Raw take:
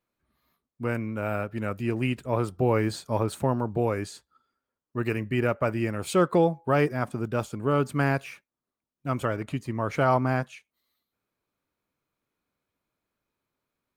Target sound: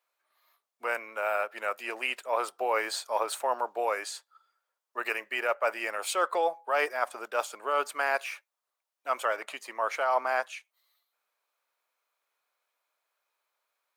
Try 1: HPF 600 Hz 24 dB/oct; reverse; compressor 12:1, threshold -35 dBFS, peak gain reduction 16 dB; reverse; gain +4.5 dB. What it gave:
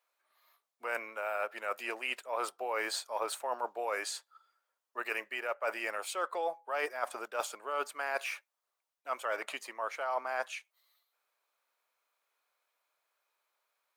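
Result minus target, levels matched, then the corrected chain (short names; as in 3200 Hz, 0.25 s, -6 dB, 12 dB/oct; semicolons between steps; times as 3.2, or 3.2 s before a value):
compressor: peak gain reduction +8 dB
HPF 600 Hz 24 dB/oct; reverse; compressor 12:1, threshold -26.5 dBFS, peak gain reduction 8 dB; reverse; gain +4.5 dB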